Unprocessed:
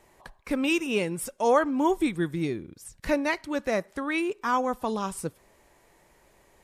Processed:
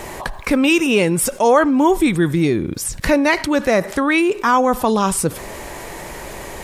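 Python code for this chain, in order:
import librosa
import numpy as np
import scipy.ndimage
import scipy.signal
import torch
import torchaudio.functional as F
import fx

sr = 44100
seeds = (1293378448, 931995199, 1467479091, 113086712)

y = fx.env_flatten(x, sr, amount_pct=50)
y = F.gain(torch.from_numpy(y), 7.5).numpy()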